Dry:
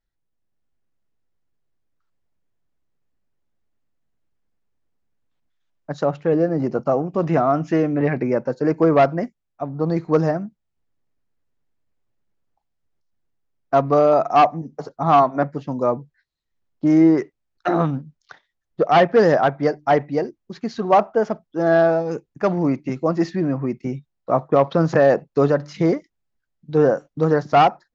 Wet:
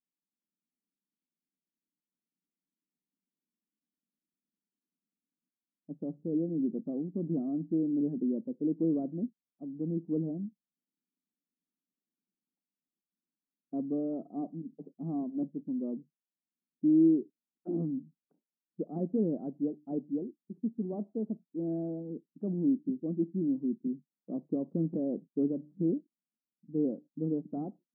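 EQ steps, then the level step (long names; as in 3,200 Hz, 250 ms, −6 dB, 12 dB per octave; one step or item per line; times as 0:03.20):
linear-phase brick-wall high-pass 160 Hz
transistor ladder low-pass 330 Hz, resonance 40%
−2.5 dB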